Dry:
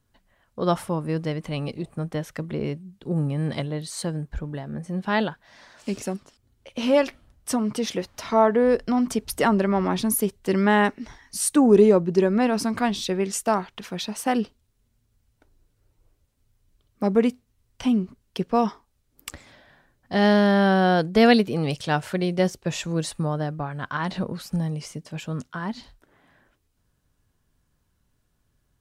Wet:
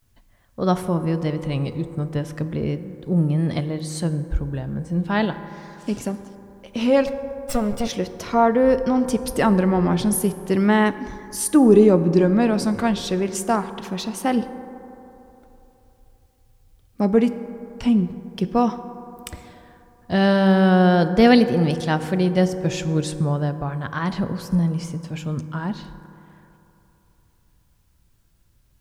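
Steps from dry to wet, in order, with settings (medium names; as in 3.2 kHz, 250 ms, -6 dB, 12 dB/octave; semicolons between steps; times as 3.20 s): 7.07–7.85 s: comb filter that takes the minimum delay 1.4 ms; bass shelf 180 Hz +10 dB; vibrato 0.38 Hz 85 cents; word length cut 12-bit, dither triangular; on a send: reverberation RT60 3.3 s, pre-delay 3 ms, DRR 10.5 dB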